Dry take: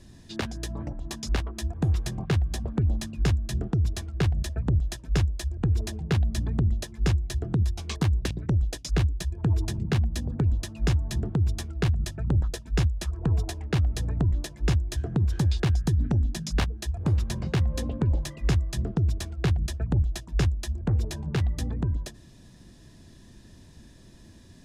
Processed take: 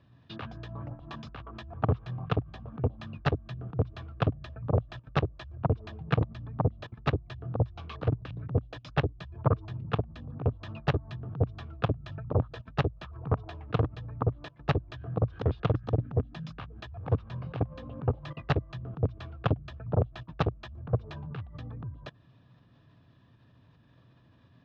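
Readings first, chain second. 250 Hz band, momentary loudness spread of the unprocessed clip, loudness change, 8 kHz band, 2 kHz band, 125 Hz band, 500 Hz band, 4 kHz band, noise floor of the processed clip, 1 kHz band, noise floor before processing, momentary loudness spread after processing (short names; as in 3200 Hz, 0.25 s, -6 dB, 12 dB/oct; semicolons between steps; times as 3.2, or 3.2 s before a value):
-5.0 dB, 4 LU, -5.5 dB, under -25 dB, -3.0 dB, -5.5 dB, +2.5 dB, -8.0 dB, -61 dBFS, +4.0 dB, -51 dBFS, 11 LU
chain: level quantiser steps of 21 dB; added harmonics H 6 -10 dB, 7 -7 dB, 8 -14 dB, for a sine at -15.5 dBFS; speaker cabinet 110–3200 Hz, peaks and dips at 120 Hz +7 dB, 210 Hz -8 dB, 360 Hz -9 dB, 1200 Hz +8 dB, 2000 Hz -6 dB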